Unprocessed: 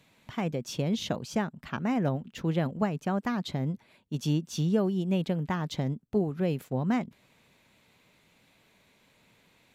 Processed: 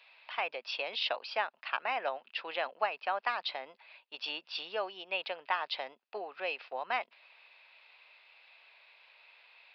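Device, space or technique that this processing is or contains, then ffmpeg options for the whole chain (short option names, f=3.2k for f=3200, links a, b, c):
musical greeting card: -af "aresample=11025,aresample=44100,highpass=f=670:w=0.5412,highpass=f=670:w=1.3066,equalizer=f=2.6k:t=o:w=0.22:g=10,volume=3dB"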